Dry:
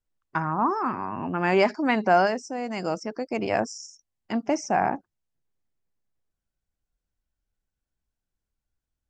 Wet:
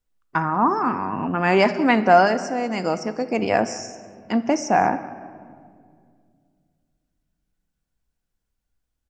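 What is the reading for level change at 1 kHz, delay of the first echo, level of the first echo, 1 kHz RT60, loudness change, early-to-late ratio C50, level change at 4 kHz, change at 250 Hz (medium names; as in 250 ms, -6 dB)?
+5.5 dB, 191 ms, -19.5 dB, 1.8 s, +5.0 dB, 12.5 dB, +5.0 dB, +5.5 dB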